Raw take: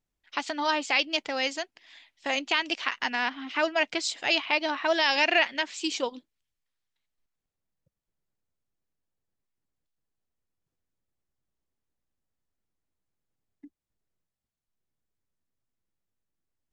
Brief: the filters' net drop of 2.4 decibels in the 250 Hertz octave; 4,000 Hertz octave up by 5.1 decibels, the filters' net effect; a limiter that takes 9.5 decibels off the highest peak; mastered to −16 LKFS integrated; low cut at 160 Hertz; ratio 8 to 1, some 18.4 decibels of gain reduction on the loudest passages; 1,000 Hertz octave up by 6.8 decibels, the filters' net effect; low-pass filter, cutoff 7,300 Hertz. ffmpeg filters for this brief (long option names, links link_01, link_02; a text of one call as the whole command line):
ffmpeg -i in.wav -af "highpass=160,lowpass=7300,equalizer=frequency=250:width_type=o:gain=-3.5,equalizer=frequency=1000:width_type=o:gain=8,equalizer=frequency=4000:width_type=o:gain=7,acompressor=threshold=-35dB:ratio=8,volume=24dB,alimiter=limit=-3.5dB:level=0:latency=1" out.wav